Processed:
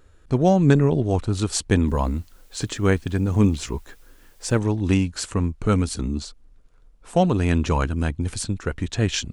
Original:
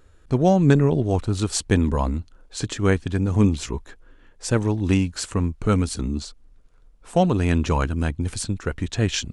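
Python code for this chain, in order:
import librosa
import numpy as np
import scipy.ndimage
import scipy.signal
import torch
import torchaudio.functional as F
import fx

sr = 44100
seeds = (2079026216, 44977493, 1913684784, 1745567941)

y = fx.quant_dither(x, sr, seeds[0], bits=10, dither='triangular', at=(1.88, 4.57))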